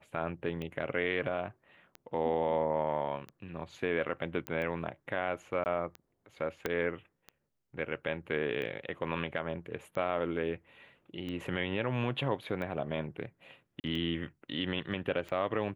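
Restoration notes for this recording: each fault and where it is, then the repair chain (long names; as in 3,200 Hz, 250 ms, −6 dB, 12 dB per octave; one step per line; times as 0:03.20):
scratch tick 45 rpm −28 dBFS
0:04.47: click −20 dBFS
0:05.64–0:05.66: drop-out 19 ms
0:06.66: click −17 dBFS
0:13.80–0:13.84: drop-out 39 ms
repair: click removal
repair the gap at 0:05.64, 19 ms
repair the gap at 0:13.80, 39 ms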